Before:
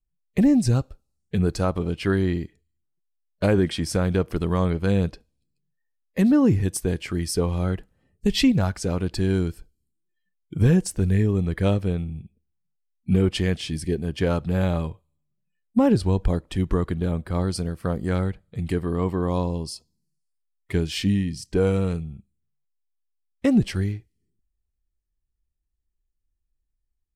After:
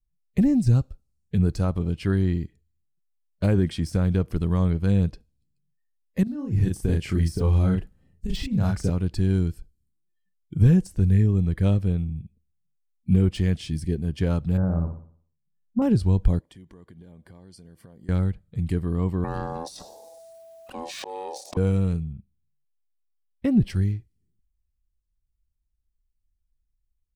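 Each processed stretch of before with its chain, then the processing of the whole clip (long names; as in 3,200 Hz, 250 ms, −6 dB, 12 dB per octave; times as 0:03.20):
0:06.23–0:08.90: compressor whose output falls as the input rises −22 dBFS, ratio −0.5 + double-tracking delay 37 ms −3 dB
0:14.57–0:15.82: elliptic low-pass filter 1,500 Hz + transient designer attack −2 dB, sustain −9 dB + flutter between parallel walls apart 10.2 metres, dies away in 0.52 s
0:16.39–0:18.09: low-shelf EQ 170 Hz −11.5 dB + downward compressor 8 to 1, threshold −41 dBFS + notch comb filter 1,300 Hz
0:19.24–0:21.57: ring modulation 660 Hz + volume swells 358 ms + envelope flattener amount 70%
0:22.13–0:23.70: parametric band 6,900 Hz −15 dB 0.66 octaves + notch filter 1,200 Hz, Q 18
whole clip: de-essing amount 65%; bass and treble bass +10 dB, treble +3 dB; level −7 dB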